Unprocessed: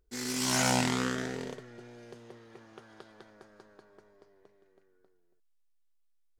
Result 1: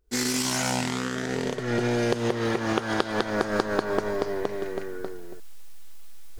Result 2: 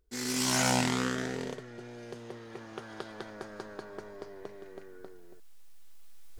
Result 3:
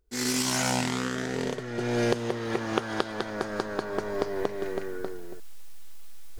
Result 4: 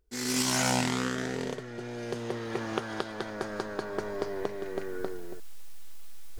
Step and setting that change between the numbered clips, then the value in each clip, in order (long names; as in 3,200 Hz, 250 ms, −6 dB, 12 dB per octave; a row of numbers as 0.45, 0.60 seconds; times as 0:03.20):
camcorder AGC, rising by: 88, 5.2, 36, 14 dB per second